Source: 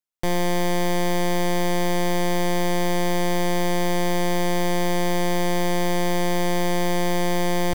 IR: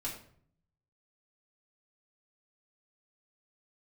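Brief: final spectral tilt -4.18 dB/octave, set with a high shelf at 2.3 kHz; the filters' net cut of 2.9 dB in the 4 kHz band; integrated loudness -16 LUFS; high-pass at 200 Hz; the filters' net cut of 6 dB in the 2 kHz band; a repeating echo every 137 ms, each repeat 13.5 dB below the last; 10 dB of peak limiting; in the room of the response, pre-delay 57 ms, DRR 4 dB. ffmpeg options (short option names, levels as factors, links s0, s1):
-filter_complex "[0:a]highpass=200,equalizer=f=2000:t=o:g=-8.5,highshelf=f=2300:g=7,equalizer=f=4000:t=o:g=-7.5,alimiter=limit=0.1:level=0:latency=1,aecho=1:1:137|274:0.211|0.0444,asplit=2[s0][s1];[1:a]atrim=start_sample=2205,adelay=57[s2];[s1][s2]afir=irnorm=-1:irlink=0,volume=0.562[s3];[s0][s3]amix=inputs=2:normalize=0,volume=6.68"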